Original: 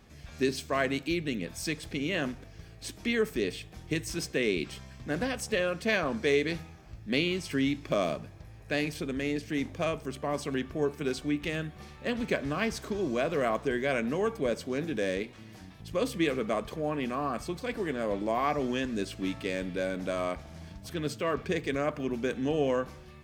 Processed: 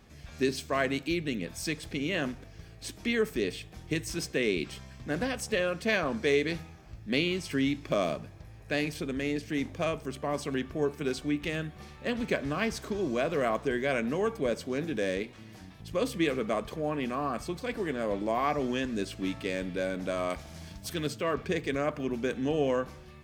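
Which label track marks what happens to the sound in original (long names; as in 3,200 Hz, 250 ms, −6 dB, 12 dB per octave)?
20.300000	21.070000	high-shelf EQ 3,100 Hz +9 dB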